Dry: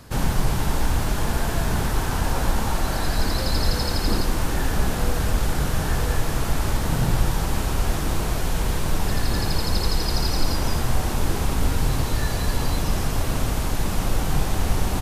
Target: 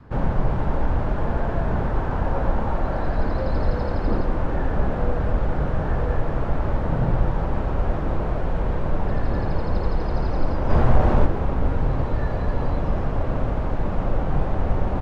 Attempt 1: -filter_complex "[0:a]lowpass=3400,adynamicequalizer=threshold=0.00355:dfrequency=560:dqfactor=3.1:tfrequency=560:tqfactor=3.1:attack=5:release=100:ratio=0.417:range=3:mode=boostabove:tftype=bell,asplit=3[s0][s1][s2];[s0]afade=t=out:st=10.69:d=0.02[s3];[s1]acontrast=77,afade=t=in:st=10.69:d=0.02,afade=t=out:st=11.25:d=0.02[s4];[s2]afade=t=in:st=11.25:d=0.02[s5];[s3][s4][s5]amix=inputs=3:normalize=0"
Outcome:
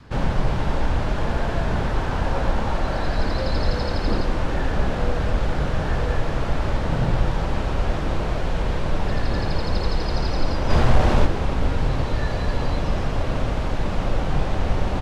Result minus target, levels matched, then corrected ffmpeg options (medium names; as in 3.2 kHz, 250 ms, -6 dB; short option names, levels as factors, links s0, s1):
4 kHz band +12.5 dB
-filter_complex "[0:a]lowpass=1400,adynamicequalizer=threshold=0.00355:dfrequency=560:dqfactor=3.1:tfrequency=560:tqfactor=3.1:attack=5:release=100:ratio=0.417:range=3:mode=boostabove:tftype=bell,asplit=3[s0][s1][s2];[s0]afade=t=out:st=10.69:d=0.02[s3];[s1]acontrast=77,afade=t=in:st=10.69:d=0.02,afade=t=out:st=11.25:d=0.02[s4];[s2]afade=t=in:st=11.25:d=0.02[s5];[s3][s4][s5]amix=inputs=3:normalize=0"